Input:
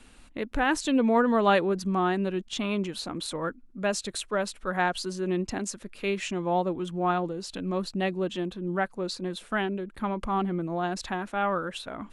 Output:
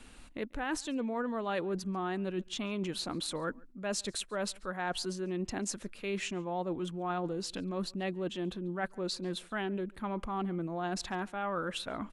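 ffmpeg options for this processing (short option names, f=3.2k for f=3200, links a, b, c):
-filter_complex "[0:a]areverse,acompressor=threshold=-32dB:ratio=6,areverse,asplit=2[a][b];[b]adelay=139.9,volume=-26dB,highshelf=f=4k:g=-3.15[c];[a][c]amix=inputs=2:normalize=0"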